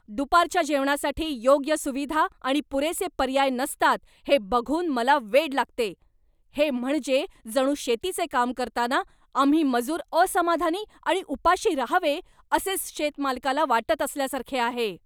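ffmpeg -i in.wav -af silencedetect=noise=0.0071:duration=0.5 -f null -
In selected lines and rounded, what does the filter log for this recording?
silence_start: 5.94
silence_end: 6.55 | silence_duration: 0.62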